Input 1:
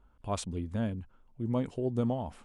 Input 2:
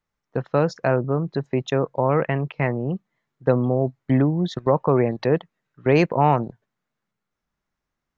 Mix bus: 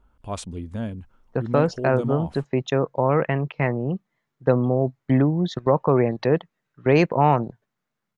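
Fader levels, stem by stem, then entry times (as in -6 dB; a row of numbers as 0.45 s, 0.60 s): +2.5 dB, 0.0 dB; 0.00 s, 1.00 s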